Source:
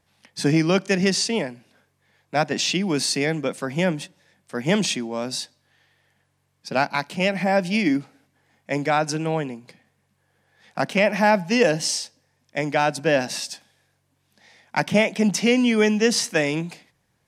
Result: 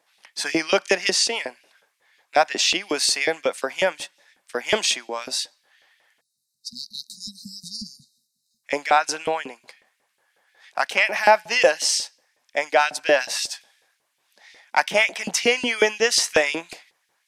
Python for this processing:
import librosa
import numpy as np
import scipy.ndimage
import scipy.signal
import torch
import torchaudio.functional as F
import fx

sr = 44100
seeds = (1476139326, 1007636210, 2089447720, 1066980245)

y = fx.filter_lfo_highpass(x, sr, shape='saw_up', hz=5.5, low_hz=390.0, high_hz=3200.0, q=1.2)
y = fx.spec_erase(y, sr, start_s=6.21, length_s=2.43, low_hz=240.0, high_hz=3700.0)
y = F.gain(torch.from_numpy(y), 3.0).numpy()